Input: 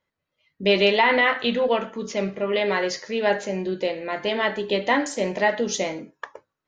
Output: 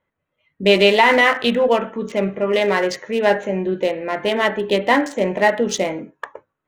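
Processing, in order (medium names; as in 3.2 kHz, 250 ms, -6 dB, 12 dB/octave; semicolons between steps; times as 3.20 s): local Wiener filter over 9 samples; trim +5.5 dB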